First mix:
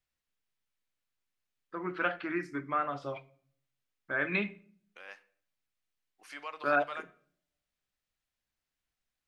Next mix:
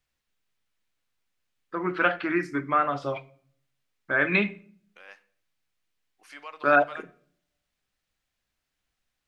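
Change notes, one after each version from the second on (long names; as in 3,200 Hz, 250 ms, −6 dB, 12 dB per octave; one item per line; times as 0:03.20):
first voice +8.0 dB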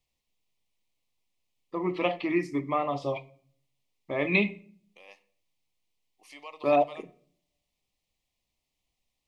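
master: add Butterworth band-reject 1,500 Hz, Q 1.5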